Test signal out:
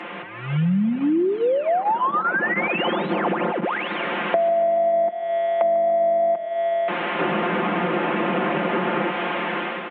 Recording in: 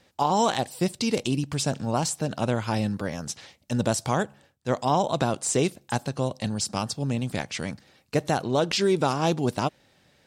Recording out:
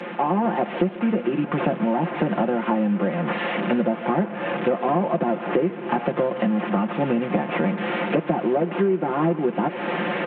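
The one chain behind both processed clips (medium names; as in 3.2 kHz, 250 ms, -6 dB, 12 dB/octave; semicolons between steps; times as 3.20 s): one-bit delta coder 16 kbps, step -34 dBFS; steep high-pass 180 Hz 48 dB/octave; level rider gain up to 9.5 dB; low-pass 1.2 kHz 6 dB/octave; comb 5.7 ms, depth 79%; compression 10:1, threshold -27 dBFS; modulated delay 144 ms, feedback 59%, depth 112 cents, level -18 dB; trim +8.5 dB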